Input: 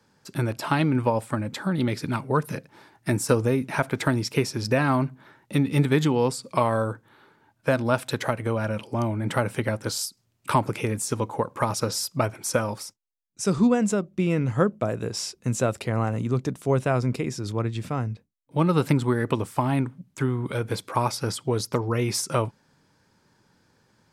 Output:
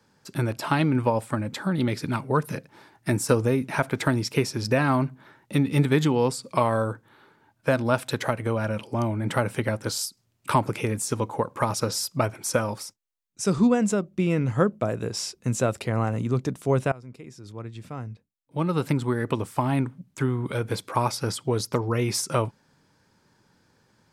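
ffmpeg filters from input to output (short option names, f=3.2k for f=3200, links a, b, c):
-filter_complex "[0:a]asplit=2[a][b];[a]atrim=end=16.92,asetpts=PTS-STARTPTS,afade=t=out:st=16.916:d=0.004:c=hsin:silence=0.0794328[c];[b]atrim=start=16.92,asetpts=PTS-STARTPTS,afade=t=in:d=2.92:silence=0.0794328[d];[c][d]concat=n=2:v=0:a=1"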